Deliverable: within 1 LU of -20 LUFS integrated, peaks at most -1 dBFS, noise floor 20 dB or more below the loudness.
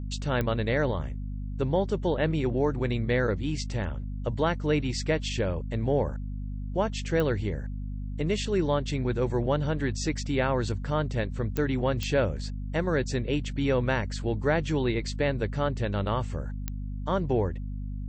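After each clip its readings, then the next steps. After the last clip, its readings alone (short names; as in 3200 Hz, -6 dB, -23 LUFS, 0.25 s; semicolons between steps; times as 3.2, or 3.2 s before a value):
clicks 5; hum 50 Hz; harmonics up to 250 Hz; hum level -31 dBFS; loudness -28.5 LUFS; peak -12.5 dBFS; loudness target -20.0 LUFS
-> de-click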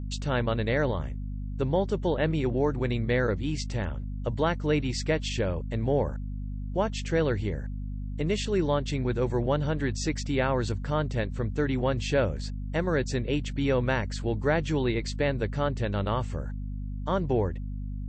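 clicks 0; hum 50 Hz; harmonics up to 250 Hz; hum level -31 dBFS
-> notches 50/100/150/200/250 Hz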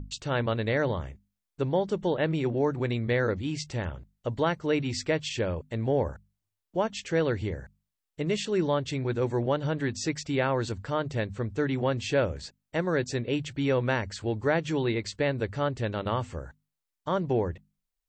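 hum none; loudness -29.0 LUFS; peak -12.5 dBFS; loudness target -20.0 LUFS
-> gain +9 dB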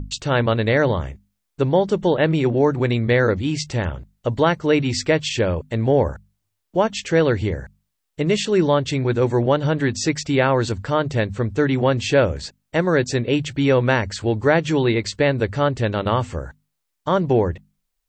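loudness -20.0 LUFS; peak -3.5 dBFS; noise floor -76 dBFS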